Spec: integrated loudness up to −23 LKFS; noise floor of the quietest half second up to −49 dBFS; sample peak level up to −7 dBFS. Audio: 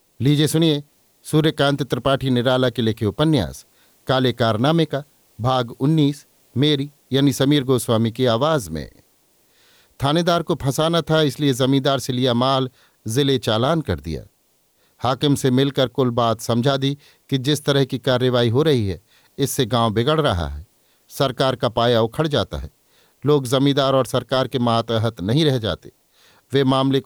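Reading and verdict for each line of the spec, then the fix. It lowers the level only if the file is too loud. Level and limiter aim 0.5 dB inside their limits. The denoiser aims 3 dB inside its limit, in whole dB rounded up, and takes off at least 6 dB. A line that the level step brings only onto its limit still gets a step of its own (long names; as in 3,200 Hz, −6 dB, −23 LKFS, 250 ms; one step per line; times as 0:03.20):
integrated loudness −19.5 LKFS: out of spec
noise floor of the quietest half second −62 dBFS: in spec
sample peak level −5.0 dBFS: out of spec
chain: level −4 dB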